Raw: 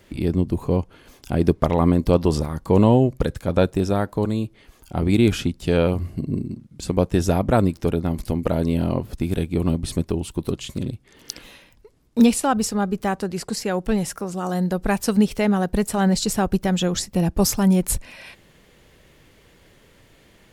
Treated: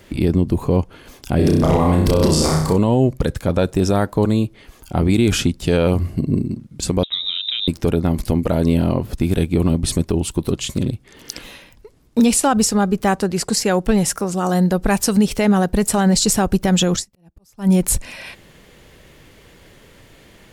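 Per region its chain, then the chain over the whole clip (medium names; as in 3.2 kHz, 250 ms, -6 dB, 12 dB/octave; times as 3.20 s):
1.36–2.78 s: hum notches 50/100/150/200/250/300 Hz + transient shaper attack -5 dB, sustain +8 dB + flutter echo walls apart 5.5 m, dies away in 0.67 s
7.03–7.68 s: compression 8:1, threshold -28 dBFS + distance through air 72 m + frequency inversion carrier 3.8 kHz
16.96–17.69 s: slow attack 526 ms + upward expansion 2.5:1, over -35 dBFS
whole clip: dynamic bell 7.5 kHz, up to +5 dB, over -42 dBFS, Q 0.85; peak limiter -13 dBFS; trim +6.5 dB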